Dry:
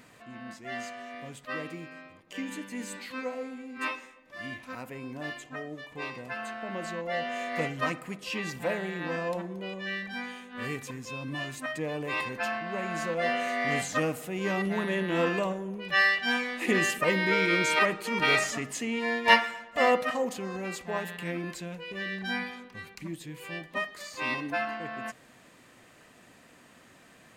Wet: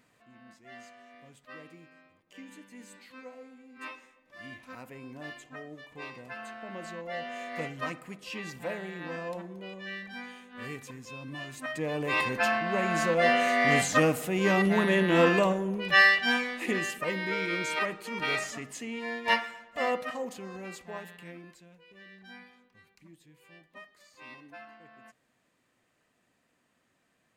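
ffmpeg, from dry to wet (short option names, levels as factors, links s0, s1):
-af "volume=1.78,afade=t=in:st=3.6:d=1.1:silence=0.473151,afade=t=in:st=11.48:d=0.85:silence=0.316228,afade=t=out:st=15.84:d=0.98:silence=0.281838,afade=t=out:st=20.68:d=0.93:silence=0.281838"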